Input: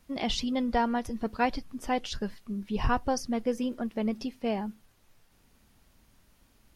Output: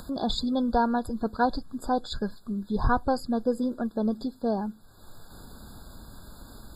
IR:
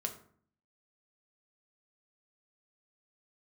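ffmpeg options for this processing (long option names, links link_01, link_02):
-af "acompressor=mode=upward:threshold=-33dB:ratio=2.5,afftfilt=real='re*eq(mod(floor(b*sr/1024/1700),2),0)':imag='im*eq(mod(floor(b*sr/1024/1700),2),0)':win_size=1024:overlap=0.75,volume=3dB"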